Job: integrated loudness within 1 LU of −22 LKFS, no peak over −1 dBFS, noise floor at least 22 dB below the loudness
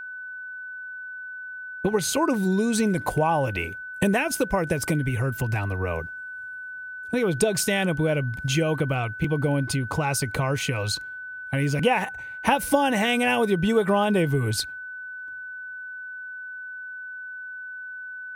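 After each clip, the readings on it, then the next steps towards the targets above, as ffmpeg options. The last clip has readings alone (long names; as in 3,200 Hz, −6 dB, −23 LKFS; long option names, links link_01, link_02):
interfering tone 1,500 Hz; level of the tone −34 dBFS; integrated loudness −25.5 LKFS; sample peak −6.5 dBFS; target loudness −22.0 LKFS
→ -af "bandreject=frequency=1500:width=30"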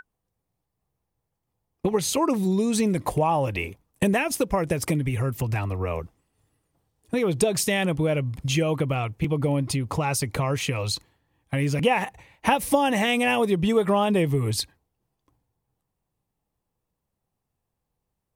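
interfering tone none found; integrated loudness −24.5 LKFS; sample peak −6.5 dBFS; target loudness −22.0 LKFS
→ -af "volume=2.5dB"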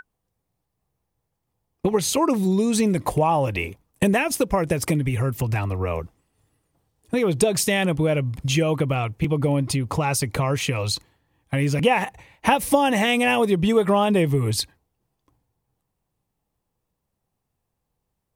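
integrated loudness −22.0 LKFS; sample peak −4.0 dBFS; background noise floor −79 dBFS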